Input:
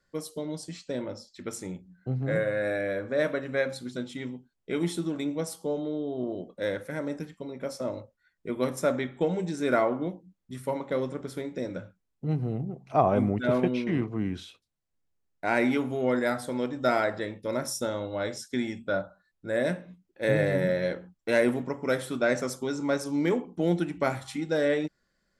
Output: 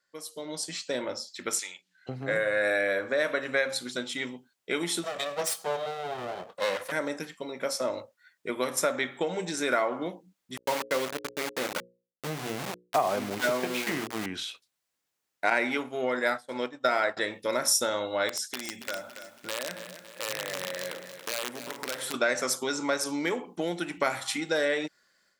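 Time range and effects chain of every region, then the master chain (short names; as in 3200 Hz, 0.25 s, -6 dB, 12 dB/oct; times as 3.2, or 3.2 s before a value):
1.59–2.09 band-pass 2900 Hz, Q 1.2 + high shelf 2600 Hz +12 dB
5.03–6.92 minimum comb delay 1.6 ms + HPF 87 Hz
10.57–14.26 running mean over 6 samples + sample gate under -33.5 dBFS + notches 60/120/180/240/300/360/420/480/540 Hz
15.5–17.17 high shelf 7000 Hz -7.5 dB + expander -27 dBFS
18.29–22.14 compressor 5:1, threshold -38 dBFS + wrapped overs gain 31.5 dB + lo-fi delay 0.28 s, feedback 55%, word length 10-bit, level -10 dB
whole clip: compressor, threshold -27 dBFS; HPF 1200 Hz 6 dB/oct; AGC gain up to 11 dB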